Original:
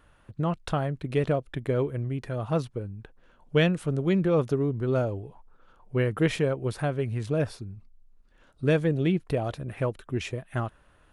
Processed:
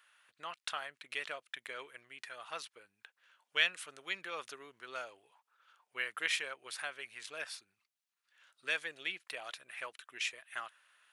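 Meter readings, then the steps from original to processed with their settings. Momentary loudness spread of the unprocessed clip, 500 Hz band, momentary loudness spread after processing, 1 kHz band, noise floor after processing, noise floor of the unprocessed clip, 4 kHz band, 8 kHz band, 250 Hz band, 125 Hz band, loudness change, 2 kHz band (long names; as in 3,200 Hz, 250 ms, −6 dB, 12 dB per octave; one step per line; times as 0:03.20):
11 LU, −22.5 dB, 15 LU, −9.5 dB, below −85 dBFS, −60 dBFS, +1.5 dB, +0.5 dB, −33.5 dB, below −40 dB, −11.5 dB, 0.0 dB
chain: Chebyshev high-pass filter 2,000 Hz, order 2
level +1.5 dB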